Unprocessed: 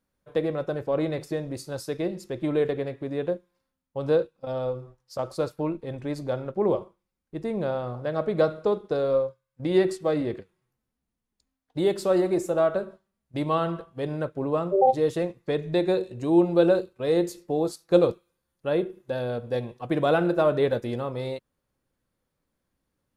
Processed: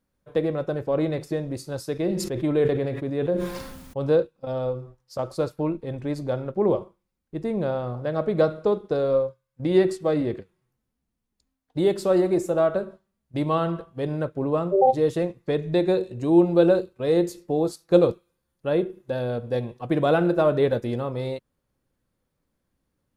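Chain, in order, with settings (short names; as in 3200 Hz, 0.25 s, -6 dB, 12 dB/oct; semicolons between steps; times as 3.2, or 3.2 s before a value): low shelf 430 Hz +4 dB; 1.93–4.2 sustainer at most 41 dB/s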